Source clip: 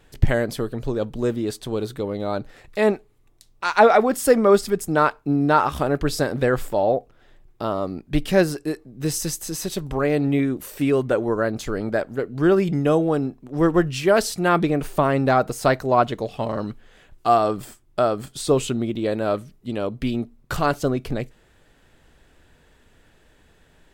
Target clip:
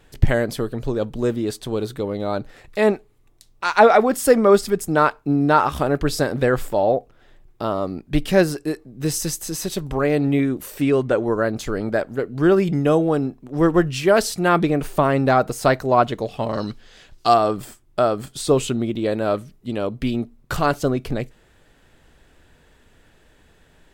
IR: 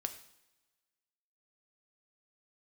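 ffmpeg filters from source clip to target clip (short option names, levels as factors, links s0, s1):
-filter_complex "[0:a]asettb=1/sr,asplit=3[s0][s1][s2];[s0]atrim=end=10.814[s3];[s1]atrim=start=10.81:end=11.26,asetpts=PTS-STARTPTS,afade=t=in:d=0.004:c=qsin,afade=t=out:st=0.446:d=0.004:c=qsin,lowpass=8800[s4];[s2]atrim=start=11.256[s5];[s3][s4]acrossfade=d=0.004:c1=hsin:c2=qsin[s6];[s6][s5]acrossfade=d=0.004:c1=qsin:c2=hsin,asettb=1/sr,asplit=3[s7][s8][s9];[s7]atrim=end=16.534[s10];[s8]atrim=start=16.53:end=17.34,asetpts=PTS-STARTPTS,afade=t=in:d=0.004:c=qsin,afade=t=out:st=0.806:d=0.004:c=qsin,equalizer=f=4900:w=1.1:g=13[s11];[s9]atrim=start=17.336[s12];[s10][s11]acrossfade=d=0.004:c1=hsin:c2=qsin[s13];[s13][s12]acrossfade=d=0.004:c1=qsin:c2=hsin,volume=1.19"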